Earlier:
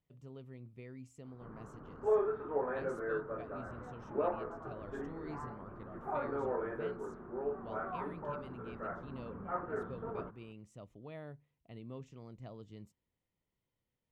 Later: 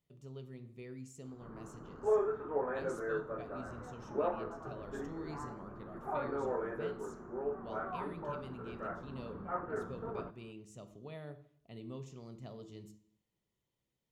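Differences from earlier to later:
speech: add tone controls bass -3 dB, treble +8 dB; reverb: on, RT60 0.60 s

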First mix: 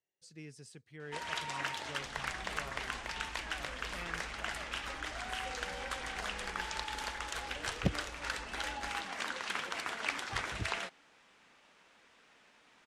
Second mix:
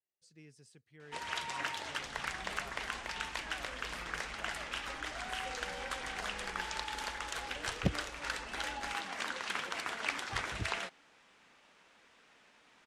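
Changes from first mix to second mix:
speech -7.5 dB; reverb: off

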